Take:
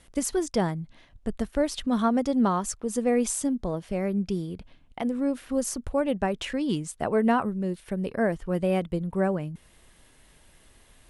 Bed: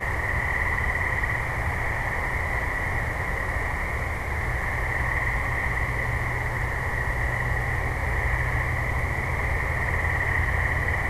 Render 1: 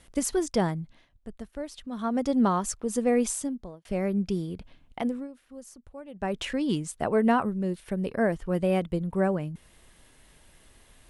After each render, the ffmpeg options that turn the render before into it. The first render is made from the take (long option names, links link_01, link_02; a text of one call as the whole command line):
ffmpeg -i in.wav -filter_complex "[0:a]asplit=6[link_01][link_02][link_03][link_04][link_05][link_06];[link_01]atrim=end=1.12,asetpts=PTS-STARTPTS,afade=type=out:start_time=0.78:duration=0.34:silence=0.281838[link_07];[link_02]atrim=start=1.12:end=1.96,asetpts=PTS-STARTPTS,volume=-11dB[link_08];[link_03]atrim=start=1.96:end=3.85,asetpts=PTS-STARTPTS,afade=type=in:duration=0.34:silence=0.281838,afade=type=out:start_time=1.24:duration=0.65[link_09];[link_04]atrim=start=3.85:end=5.28,asetpts=PTS-STARTPTS,afade=type=in:duration=0.004:curve=hsin,afade=type=out:start_time=1.21:duration=0.22:silence=0.133352[link_10];[link_05]atrim=start=5.28:end=6.13,asetpts=PTS-STARTPTS,volume=-17.5dB[link_11];[link_06]atrim=start=6.13,asetpts=PTS-STARTPTS,afade=type=in:duration=0.22:silence=0.133352[link_12];[link_07][link_08][link_09][link_10][link_11][link_12]concat=n=6:v=0:a=1" out.wav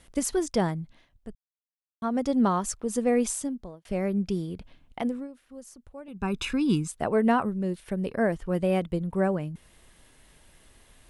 ffmpeg -i in.wav -filter_complex "[0:a]asettb=1/sr,asplit=3[link_01][link_02][link_03];[link_01]atrim=end=6.084[link_04];[link_02]atrim=start=6.08:end=6.88,asetpts=PTS-STARTPTS,afade=type=in:duration=0.004:curve=qsin,afade=type=out:start_time=0.796:duration=0.004:curve=qsin,aecho=1:1:0.8:0.88,atrim=end_sample=35280[link_05];[link_03]atrim=start=6.876[link_06];[link_04][link_05]acrossfade=duration=0.004:curve1=hsin:curve2=qsin[link_07];[link_07][link_06]acrossfade=duration=0.004:curve1=qsin:curve2=hsin,asplit=3[link_08][link_09][link_10];[link_08]atrim=end=1.35,asetpts=PTS-STARTPTS,afade=type=out:start_time=1.346:duration=0.004:curve=hsin[link_11];[link_09]atrim=start=1.35:end=2.02,asetpts=PTS-STARTPTS,volume=0[link_12];[link_10]atrim=start=2.02,asetpts=PTS-STARTPTS,afade=type=in:duration=0.004:curve=hsin[link_13];[link_11][link_12][link_13]concat=n=3:v=0:a=1" out.wav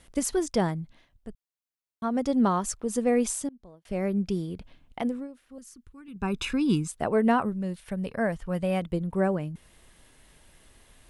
ffmpeg -i in.wav -filter_complex "[0:a]asettb=1/sr,asplit=3[link_01][link_02][link_03];[link_01]atrim=end=5.584[link_04];[link_02]atrim=start=5.58:end=6.16,asetpts=PTS-STARTPTS,afade=type=in:duration=0.004:curve=qsin,afade=type=out:start_time=0.576:duration=0.004:curve=qsin,asuperstop=centerf=660:order=4:qfactor=0.88[link_05];[link_03]atrim=start=6.156[link_06];[link_04][link_05]acrossfade=duration=0.004:curve1=hsin:curve2=qsin[link_07];[link_07][link_06]acrossfade=duration=0.004:curve1=qsin:curve2=hsin,asettb=1/sr,asplit=3[link_08][link_09][link_10];[link_08]atrim=end=7.524[link_11];[link_09]atrim=start=7.52:end=8.82,asetpts=PTS-STARTPTS,afade=type=in:duration=0.004:curve=qsin,afade=type=out:start_time=1.296:duration=0.004:curve=qsin,equalizer=frequency=350:width_type=o:width=0.77:gain=-8.5[link_12];[link_10]atrim=start=8.816[link_13];[link_11][link_12]acrossfade=duration=0.004:curve1=hsin:curve2=qsin[link_14];[link_14][link_13]acrossfade=duration=0.004:curve1=qsin:curve2=hsin,asplit=2[link_15][link_16];[link_15]atrim=end=3.49,asetpts=PTS-STARTPTS,afade=type=out:start_time=3.486:duration=0.004:curve=hsin:silence=0.0668344[link_17];[link_16]atrim=start=3.49,asetpts=PTS-STARTPTS,afade=type=in:duration=0.55:silence=0.0668344[link_18];[link_17][link_18]concat=n=2:v=0:a=1" out.wav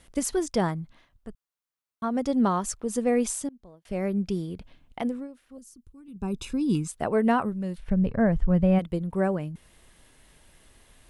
ffmpeg -i in.wav -filter_complex "[0:a]asettb=1/sr,asplit=3[link_01][link_02][link_03];[link_01]atrim=end=0.634[link_04];[link_02]atrim=start=0.63:end=2.05,asetpts=PTS-STARTPTS,afade=type=in:duration=0.004:curve=qsin,afade=type=out:start_time=1.416:duration=0.004:curve=qsin,equalizer=frequency=1200:width_type=o:width=0.77:gain=6[link_05];[link_03]atrim=start=2.046[link_06];[link_04][link_05]acrossfade=duration=0.004:curve1=hsin:curve2=qsin[link_07];[link_07][link_06]acrossfade=duration=0.004:curve1=qsin:curve2=hsin,asettb=1/sr,asplit=3[link_08][link_09][link_10];[link_08]atrim=end=5.574[link_11];[link_09]atrim=start=5.57:end=6.75,asetpts=PTS-STARTPTS,afade=type=in:duration=0.004:curve=qsin,afade=type=out:start_time=1.176:duration=0.004:curve=qsin,equalizer=frequency=1800:width=0.73:gain=-14.5[link_12];[link_10]atrim=start=6.746[link_13];[link_11][link_12]acrossfade=duration=0.004:curve1=hsin:curve2=qsin[link_14];[link_14][link_13]acrossfade=duration=0.004:curve1=qsin:curve2=hsin,asplit=3[link_15][link_16][link_17];[link_15]afade=type=out:start_time=7.77:duration=0.02[link_18];[link_16]aemphasis=mode=reproduction:type=riaa,afade=type=in:start_time=7.77:duration=0.02,afade=type=out:start_time=8.78:duration=0.02[link_19];[link_17]afade=type=in:start_time=8.78:duration=0.02[link_20];[link_18][link_19][link_20]amix=inputs=3:normalize=0" out.wav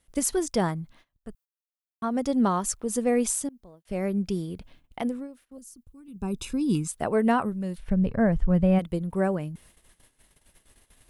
ffmpeg -i in.wav -af "agate=range=-15dB:threshold=-54dB:ratio=16:detection=peak,highshelf=frequency=10000:gain=10" out.wav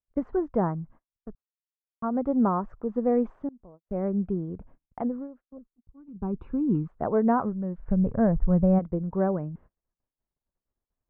ffmpeg -i in.wav -af "lowpass=frequency=1300:width=0.5412,lowpass=frequency=1300:width=1.3066,agate=range=-26dB:threshold=-49dB:ratio=16:detection=peak" out.wav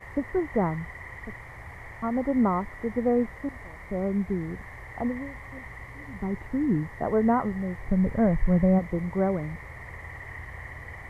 ffmpeg -i in.wav -i bed.wav -filter_complex "[1:a]volume=-16dB[link_01];[0:a][link_01]amix=inputs=2:normalize=0" out.wav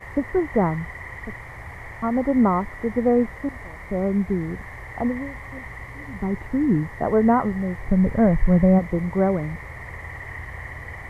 ffmpeg -i in.wav -af "volume=5dB" out.wav